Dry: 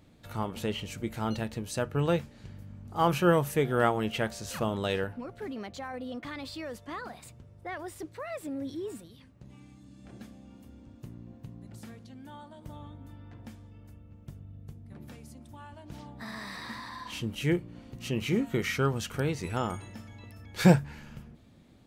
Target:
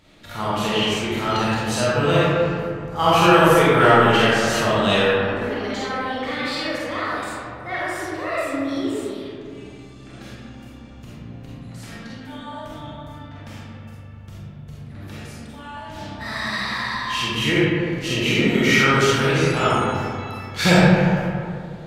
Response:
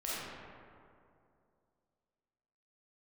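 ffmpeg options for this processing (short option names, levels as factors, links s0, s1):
-filter_complex "[0:a]equalizer=f=3100:w=0.32:g=10,acontrast=76[s0];[1:a]atrim=start_sample=2205[s1];[s0][s1]afir=irnorm=-1:irlink=0,volume=0.75"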